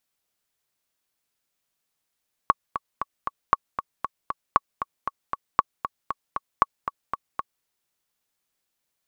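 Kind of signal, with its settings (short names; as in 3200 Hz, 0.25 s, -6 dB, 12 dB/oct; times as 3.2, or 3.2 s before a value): metronome 233 bpm, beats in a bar 4, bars 5, 1120 Hz, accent 10.5 dB -3 dBFS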